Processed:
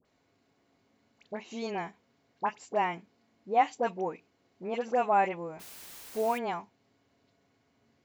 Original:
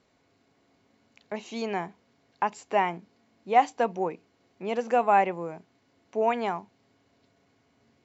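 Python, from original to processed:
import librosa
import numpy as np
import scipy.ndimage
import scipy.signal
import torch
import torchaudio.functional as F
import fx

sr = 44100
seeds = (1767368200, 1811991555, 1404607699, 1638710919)

y = fx.dmg_noise_colour(x, sr, seeds[0], colour='white', level_db=-44.0, at=(5.54, 6.32), fade=0.02)
y = fx.dispersion(y, sr, late='highs', ms=53.0, hz=1300.0)
y = y * librosa.db_to_amplitude(-4.0)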